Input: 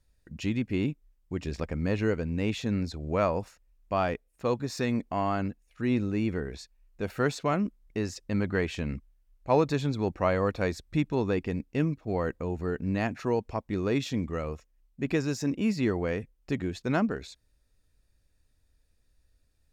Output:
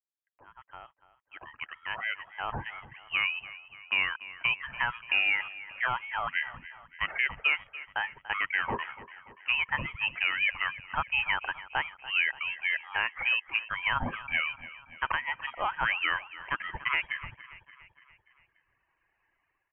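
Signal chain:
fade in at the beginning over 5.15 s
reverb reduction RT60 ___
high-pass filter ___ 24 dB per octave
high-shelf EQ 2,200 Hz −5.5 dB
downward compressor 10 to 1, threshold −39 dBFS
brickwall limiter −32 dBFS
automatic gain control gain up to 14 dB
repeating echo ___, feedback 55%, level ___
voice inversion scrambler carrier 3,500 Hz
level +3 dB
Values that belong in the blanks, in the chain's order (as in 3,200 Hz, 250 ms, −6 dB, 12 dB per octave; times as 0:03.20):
1.2 s, 940 Hz, 289 ms, −16.5 dB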